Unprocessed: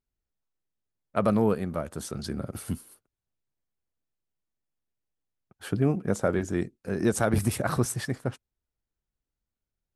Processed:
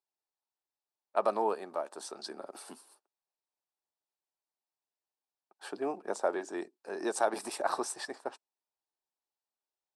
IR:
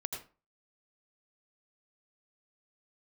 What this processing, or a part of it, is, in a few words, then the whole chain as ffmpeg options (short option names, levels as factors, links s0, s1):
phone speaker on a table: -af "highpass=f=410:w=0.5412,highpass=f=410:w=1.3066,equalizer=f=490:t=q:w=4:g=-8,equalizer=f=870:t=q:w=4:g=6,equalizer=f=1400:t=q:w=4:g=-6,equalizer=f=2100:t=q:w=4:g=-10,equalizer=f=3100:t=q:w=4:g=-7,equalizer=f=6600:t=q:w=4:g=-8,lowpass=f=8400:w=0.5412,lowpass=f=8400:w=1.3066"